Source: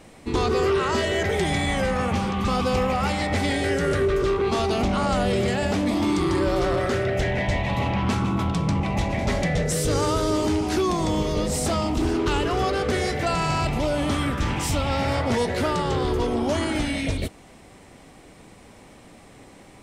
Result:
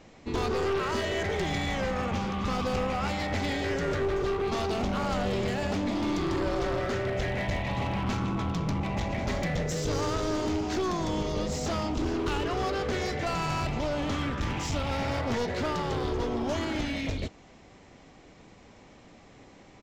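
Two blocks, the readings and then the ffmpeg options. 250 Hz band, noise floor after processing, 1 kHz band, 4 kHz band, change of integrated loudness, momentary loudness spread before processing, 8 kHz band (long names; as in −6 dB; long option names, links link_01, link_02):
−6.5 dB, −53 dBFS, −6.0 dB, −6.0 dB, −6.5 dB, 2 LU, −8.5 dB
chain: -af "aresample=16000,aresample=44100,aeval=exprs='clip(val(0),-1,0.0668)':channel_layout=same,volume=-5dB"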